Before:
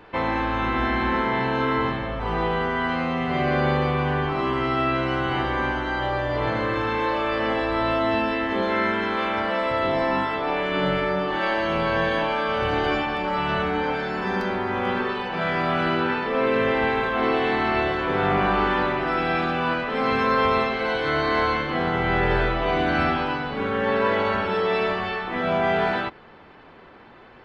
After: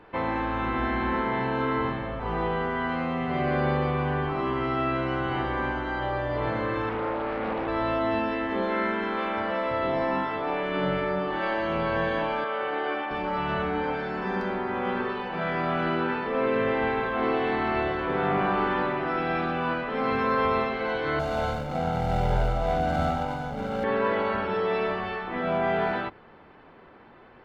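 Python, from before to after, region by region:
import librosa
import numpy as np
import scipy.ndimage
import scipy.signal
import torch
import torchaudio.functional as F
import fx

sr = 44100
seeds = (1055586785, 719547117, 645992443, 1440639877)

y = fx.chain(x, sr, fx.air_absorb(metres=440.0),
    fx.doppler_dist(depth_ms=0.57), at=(6.89, 7.68))
y = fx.chain(y, sr, fx.bandpass_edges(low_hz=410.0, high_hz=3200.0),
    fx.doubler(ms=13.0, db=-12.5), at=(12.44, 13.11))
y = fx.chain(y, sr, fx.median_filter(points=25),
    fx.comb(ms=1.4, depth=0.78), at=(21.19, 23.84))
y = fx.high_shelf(y, sr, hz=3500.0, db=-10.5)
y = fx.hum_notches(y, sr, base_hz=50, count=2)
y = y * librosa.db_to_amplitude(-3.0)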